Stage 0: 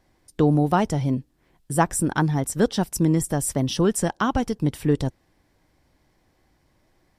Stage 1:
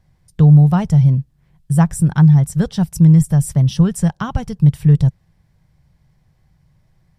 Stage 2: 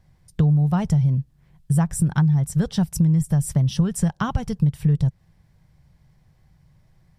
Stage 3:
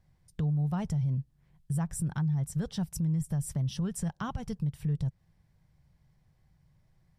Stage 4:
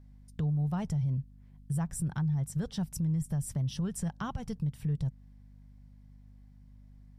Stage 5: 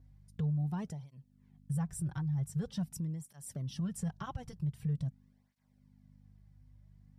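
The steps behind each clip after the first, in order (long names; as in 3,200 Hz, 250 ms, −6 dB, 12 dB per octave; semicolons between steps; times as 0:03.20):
low shelf with overshoot 210 Hz +10 dB, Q 3; level −2 dB
downward compressor 6 to 1, threshold −16 dBFS, peak gain reduction 11 dB
brickwall limiter −15 dBFS, peak gain reduction 6 dB; level −9 dB
mains hum 50 Hz, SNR 20 dB; level −1 dB
through-zero flanger with one copy inverted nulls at 0.45 Hz, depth 5 ms; level −2 dB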